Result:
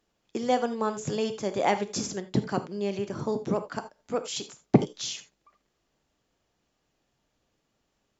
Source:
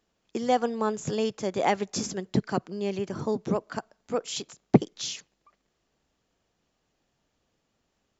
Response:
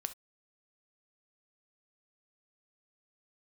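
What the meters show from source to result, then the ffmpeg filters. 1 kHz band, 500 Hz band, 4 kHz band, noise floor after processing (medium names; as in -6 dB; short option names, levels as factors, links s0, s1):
-0.5 dB, -0.5 dB, 0.0 dB, -77 dBFS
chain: -filter_complex "[1:a]atrim=start_sample=2205,asetrate=37044,aresample=44100[s0];[0:a][s0]afir=irnorm=-1:irlink=0"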